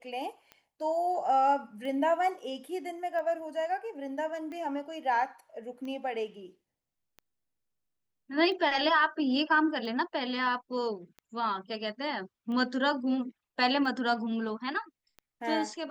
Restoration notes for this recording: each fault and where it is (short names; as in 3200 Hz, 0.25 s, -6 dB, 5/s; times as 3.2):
tick 45 rpm -31 dBFS